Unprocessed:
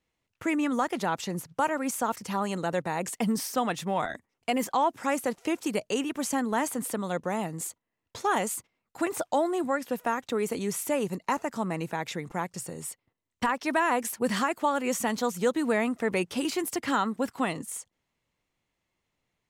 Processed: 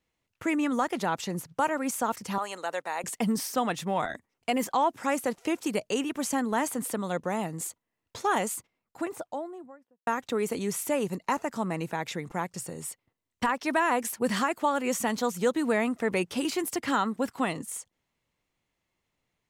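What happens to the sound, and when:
2.38–3.04 HPF 610 Hz
8.38–10.07 studio fade out

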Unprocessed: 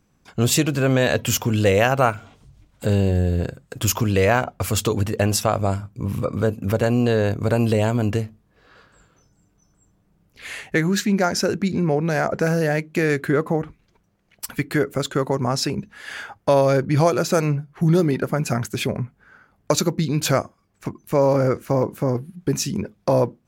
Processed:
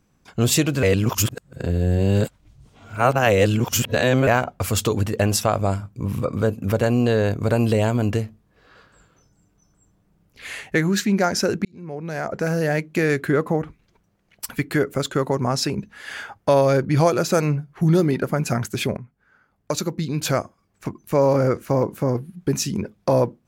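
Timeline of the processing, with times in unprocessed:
0.83–4.27 reverse
11.65–12.77 fade in
18.97–20.88 fade in, from -13 dB

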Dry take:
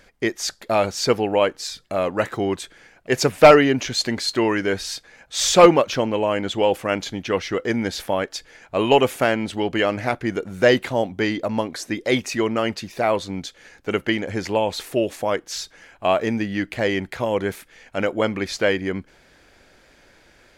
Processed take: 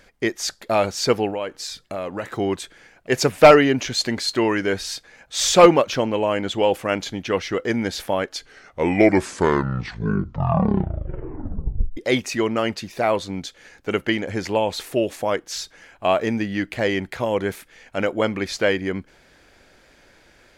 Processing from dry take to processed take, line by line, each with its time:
1.3–2.37 compressor 2.5:1, threshold -27 dBFS
8.19 tape stop 3.78 s

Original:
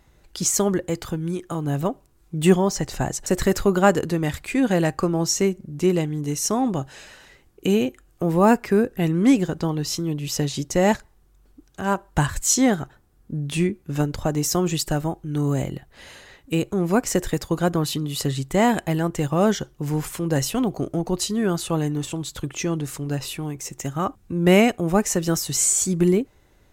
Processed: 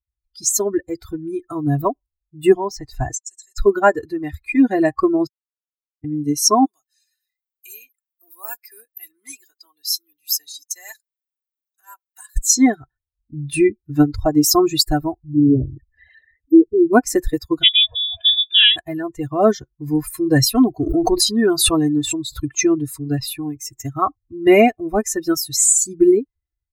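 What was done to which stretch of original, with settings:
3.15–3.58 band-pass 7100 Hz, Q 2.4
5.27–6.04 mute
6.65–12.36 differentiator
15.23–16.93 formant sharpening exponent 3
17.63–18.76 inverted band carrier 3600 Hz
20.86–22.4 backwards sustainer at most 42 dB/s
whole clip: per-bin expansion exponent 2; comb 2.9 ms, depth 93%; AGC gain up to 16 dB; gain -1 dB

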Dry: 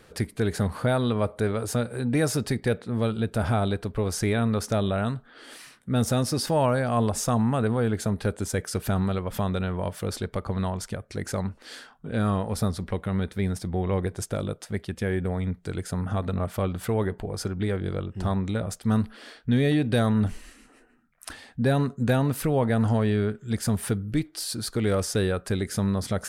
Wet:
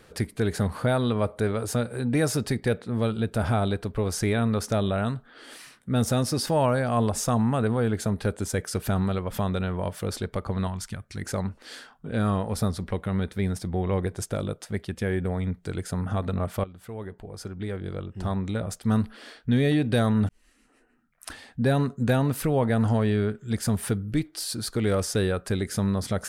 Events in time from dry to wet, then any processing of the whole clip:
10.67–11.22 bell 500 Hz -13 dB 1.2 oct
16.64–18.86 fade in, from -17 dB
20.29–21.3 fade in

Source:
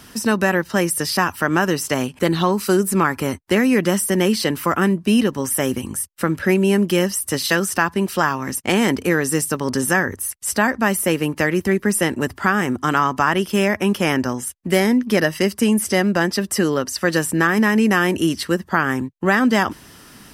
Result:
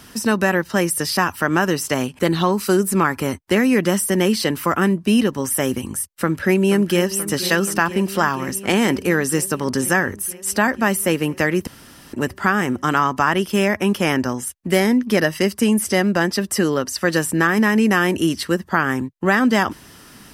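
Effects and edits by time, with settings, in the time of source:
6.15–7.11 echo throw 0.48 s, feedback 80%, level -13.5 dB
11.67–12.13 room tone

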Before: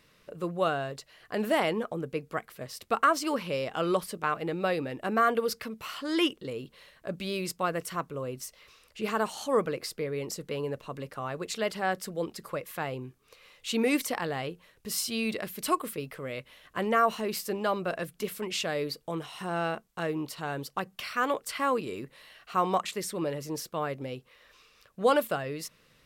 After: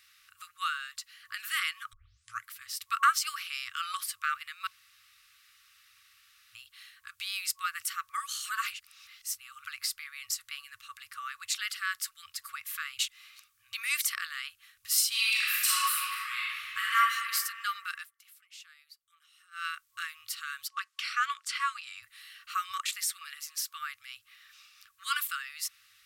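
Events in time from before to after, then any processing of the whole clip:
1.93 tape start 0.53 s
4.67–6.55 room tone
8.09–9.66 reverse
12.99–13.73 reverse
15.08–16.95 reverb throw, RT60 2.2 s, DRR -8 dB
17.95–19.65 dip -21 dB, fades 0.14 s
20.68–22.03 BPF 270–7000 Hz
22.71–23.83 HPF 400 Hz 6 dB/oct
whole clip: low shelf 100 Hz -11 dB; FFT band-reject 110–1100 Hz; tilt +2 dB/oct

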